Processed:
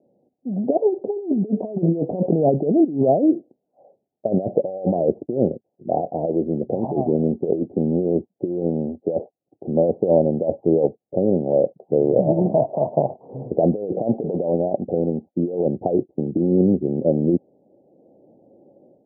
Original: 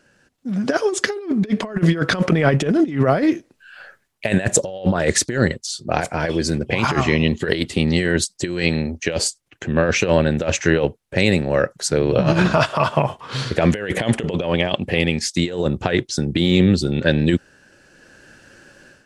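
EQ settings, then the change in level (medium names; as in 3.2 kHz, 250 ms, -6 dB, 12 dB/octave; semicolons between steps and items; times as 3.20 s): high-pass 220 Hz 12 dB/octave; steep low-pass 780 Hz 72 dB/octave; +1.5 dB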